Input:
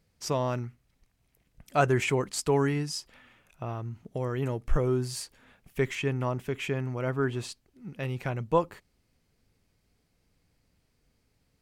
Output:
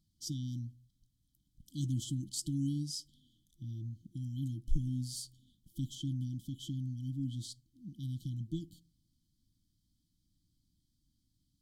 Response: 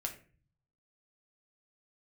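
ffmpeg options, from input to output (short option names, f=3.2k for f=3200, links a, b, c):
-filter_complex "[0:a]asplit=2[a][b];[1:a]atrim=start_sample=2205,highshelf=f=9.8k:g=2[c];[b][c]afir=irnorm=-1:irlink=0,volume=-16dB[d];[a][d]amix=inputs=2:normalize=0,afftfilt=real='re*(1-between(b*sr/4096,340,3000))':imag='im*(1-between(b*sr/4096,340,3000))':win_size=4096:overlap=0.75,volume=-6.5dB"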